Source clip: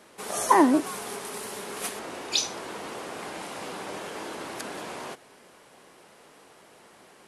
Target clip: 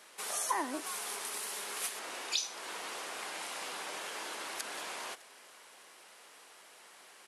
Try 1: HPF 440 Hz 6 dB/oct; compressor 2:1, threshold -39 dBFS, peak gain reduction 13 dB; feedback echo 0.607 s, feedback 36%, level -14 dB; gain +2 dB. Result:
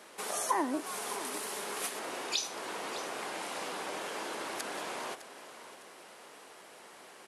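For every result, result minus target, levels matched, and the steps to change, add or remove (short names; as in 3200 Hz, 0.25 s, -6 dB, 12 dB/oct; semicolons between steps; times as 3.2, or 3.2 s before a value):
echo-to-direct +10 dB; 500 Hz band +5.5 dB
change: feedback echo 0.607 s, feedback 36%, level -24 dB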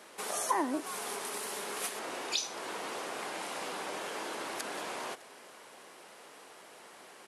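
500 Hz band +5.5 dB
change: HPF 1700 Hz 6 dB/oct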